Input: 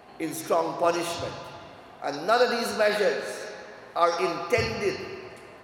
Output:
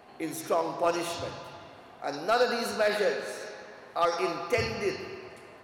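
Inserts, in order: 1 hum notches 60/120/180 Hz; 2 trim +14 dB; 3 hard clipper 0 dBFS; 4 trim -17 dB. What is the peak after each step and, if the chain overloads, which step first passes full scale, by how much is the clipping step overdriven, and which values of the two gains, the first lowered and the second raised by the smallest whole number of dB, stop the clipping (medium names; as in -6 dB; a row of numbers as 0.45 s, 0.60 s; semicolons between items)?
-7.5 dBFS, +6.5 dBFS, 0.0 dBFS, -17.0 dBFS; step 2, 6.5 dB; step 2 +7 dB, step 4 -10 dB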